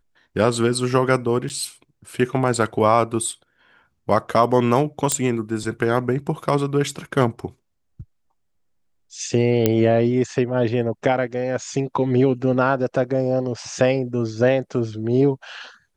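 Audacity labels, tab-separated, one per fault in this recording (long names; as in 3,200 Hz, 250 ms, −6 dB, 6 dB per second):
1.490000	1.500000	drop-out 8.4 ms
5.120000	5.120000	click −4 dBFS
9.660000	9.660000	click −3 dBFS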